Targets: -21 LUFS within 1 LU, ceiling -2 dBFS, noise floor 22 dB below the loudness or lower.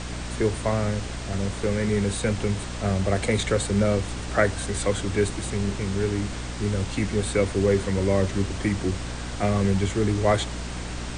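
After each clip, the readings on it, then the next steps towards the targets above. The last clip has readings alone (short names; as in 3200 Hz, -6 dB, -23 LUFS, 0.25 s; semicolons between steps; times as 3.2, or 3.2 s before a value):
hum 60 Hz; harmonics up to 300 Hz; hum level -32 dBFS; noise floor -33 dBFS; noise floor target -48 dBFS; loudness -25.5 LUFS; peak -7.5 dBFS; loudness target -21.0 LUFS
-> notches 60/120/180/240/300 Hz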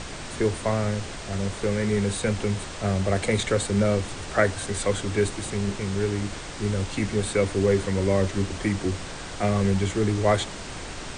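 hum none; noise floor -37 dBFS; noise floor target -48 dBFS
-> noise print and reduce 11 dB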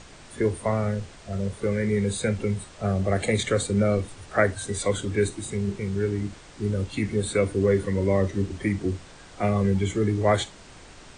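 noise floor -47 dBFS; noise floor target -48 dBFS
-> noise print and reduce 6 dB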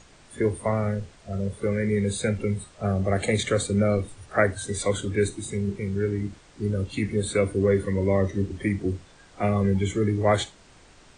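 noise floor -53 dBFS; loudness -26.0 LUFS; peak -8.0 dBFS; loudness target -21.0 LUFS
-> gain +5 dB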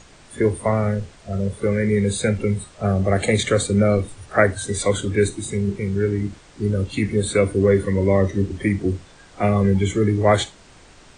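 loudness -21.0 LUFS; peak -2.5 dBFS; noise floor -48 dBFS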